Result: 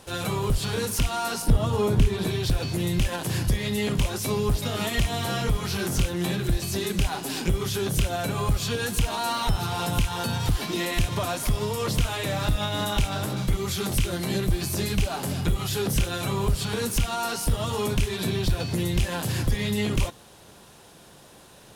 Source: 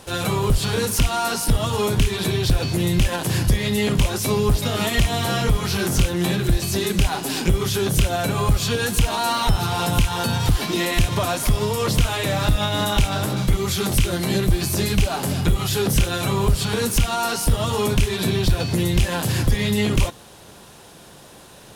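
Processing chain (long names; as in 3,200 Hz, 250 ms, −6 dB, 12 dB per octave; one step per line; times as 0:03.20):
0:01.42–0:02.27: tilt shelving filter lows +5 dB, about 1,200 Hz
level −5.5 dB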